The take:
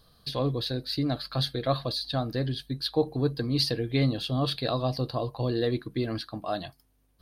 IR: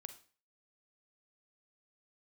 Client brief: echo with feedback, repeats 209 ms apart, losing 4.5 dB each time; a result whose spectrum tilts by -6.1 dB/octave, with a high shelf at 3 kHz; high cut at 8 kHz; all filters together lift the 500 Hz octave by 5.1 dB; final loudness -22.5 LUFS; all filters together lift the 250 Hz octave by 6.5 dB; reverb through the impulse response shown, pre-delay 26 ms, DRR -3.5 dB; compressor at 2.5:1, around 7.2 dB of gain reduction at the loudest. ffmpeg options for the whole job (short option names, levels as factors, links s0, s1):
-filter_complex "[0:a]lowpass=8000,equalizer=f=250:t=o:g=6.5,equalizer=f=500:t=o:g=4.5,highshelf=f=3000:g=-6.5,acompressor=threshold=0.0631:ratio=2.5,aecho=1:1:209|418|627|836|1045|1254|1463|1672|1881:0.596|0.357|0.214|0.129|0.0772|0.0463|0.0278|0.0167|0.01,asplit=2[s0][s1];[1:a]atrim=start_sample=2205,adelay=26[s2];[s1][s2]afir=irnorm=-1:irlink=0,volume=2.82[s3];[s0][s3]amix=inputs=2:normalize=0,volume=1.06"